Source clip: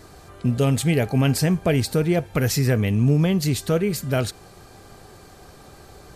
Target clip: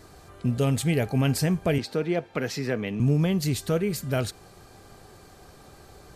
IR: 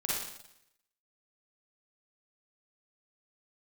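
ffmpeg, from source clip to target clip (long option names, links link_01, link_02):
-filter_complex "[0:a]asettb=1/sr,asplit=3[link_01][link_02][link_03];[link_01]atrim=end=1.784[link_04];[link_02]atrim=start=1.78:end=3,asetpts=PTS-STARTPTS,afade=type=in:duration=0.004:curve=qsin,afade=type=out:start_time=1.216:duration=0.004:curve=qsin,acrossover=split=180 5400:gain=0.126 1 0.158[link_05][link_06][link_07];[link_05][link_06][link_07]amix=inputs=3:normalize=0[link_08];[link_03]atrim=start=2.996[link_09];[link_04][link_08]acrossfade=duration=0.004:curve1=hsin:curve2=qsin[link_10];[link_10][link_09]acrossfade=duration=0.004:curve1=qsin:curve2=hsin,volume=-4dB"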